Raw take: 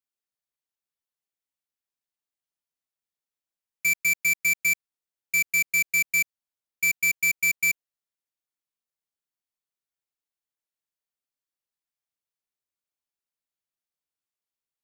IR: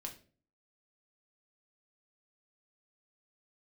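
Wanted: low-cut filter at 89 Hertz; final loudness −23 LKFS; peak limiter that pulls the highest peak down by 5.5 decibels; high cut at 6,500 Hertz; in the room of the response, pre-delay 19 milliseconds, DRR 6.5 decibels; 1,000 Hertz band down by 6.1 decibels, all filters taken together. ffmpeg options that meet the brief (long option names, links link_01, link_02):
-filter_complex "[0:a]highpass=89,lowpass=6500,equalizer=frequency=1000:width_type=o:gain=-8,alimiter=limit=-24dB:level=0:latency=1,asplit=2[link_01][link_02];[1:a]atrim=start_sample=2205,adelay=19[link_03];[link_02][link_03]afir=irnorm=-1:irlink=0,volume=-4dB[link_04];[link_01][link_04]amix=inputs=2:normalize=0,volume=5dB"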